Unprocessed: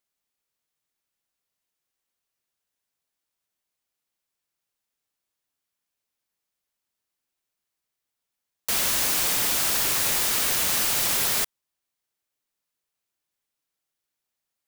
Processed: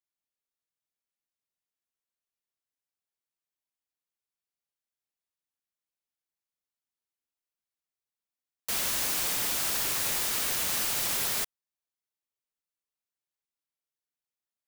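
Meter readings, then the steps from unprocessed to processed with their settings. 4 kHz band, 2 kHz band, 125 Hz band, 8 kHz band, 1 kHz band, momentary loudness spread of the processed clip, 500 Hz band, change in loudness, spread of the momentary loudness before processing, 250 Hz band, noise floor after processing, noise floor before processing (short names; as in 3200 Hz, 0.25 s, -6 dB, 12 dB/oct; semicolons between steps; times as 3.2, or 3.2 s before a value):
-5.5 dB, -5.5 dB, -5.5 dB, -5.5 dB, -5.5 dB, 5 LU, -5.5 dB, -5.5 dB, 4 LU, -5.5 dB, under -85 dBFS, -85 dBFS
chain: upward expander 1.5:1, over -35 dBFS; gain -5.5 dB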